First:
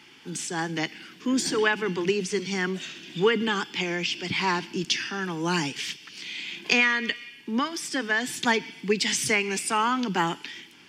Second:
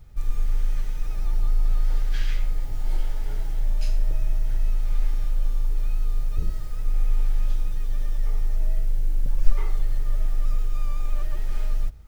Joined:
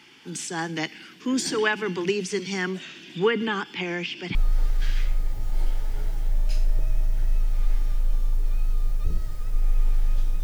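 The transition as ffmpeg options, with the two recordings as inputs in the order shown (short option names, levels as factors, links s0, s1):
-filter_complex "[0:a]asettb=1/sr,asplit=3[s0][s1][s2];[s0]atrim=end=2.744[s3];[s1]atrim=start=2.74:end=4.35,asetpts=PTS-STARTPTS,afade=t=in:d=0.004:c=qsin,afade=t=out:st=1.606:d=0.004:c=qsin,acrossover=split=3300[s4][s5];[s5]acompressor=threshold=0.00398:ratio=4:attack=1:release=60[s6];[s4][s6]amix=inputs=2:normalize=0[s7];[s2]atrim=start=4.346[s8];[s3][s7]acrossfade=d=0.004:c1=hsin:c2=qsin[s9];[s9][s8]acrossfade=d=0.004:c1=qsin:c2=hsin,apad=whole_dur=10.43,atrim=end=10.43,atrim=end=4.352[s10];[1:a]atrim=start=1.668:end=7.75[s11];[s10][s11]acrossfade=d=0.004:c1=hsin:c2=hsin"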